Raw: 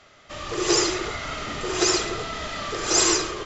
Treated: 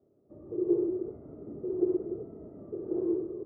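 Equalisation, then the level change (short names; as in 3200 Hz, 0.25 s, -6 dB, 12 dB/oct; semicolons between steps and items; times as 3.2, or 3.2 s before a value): HPF 100 Hz 12 dB/oct; ladder low-pass 440 Hz, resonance 50%; 0.0 dB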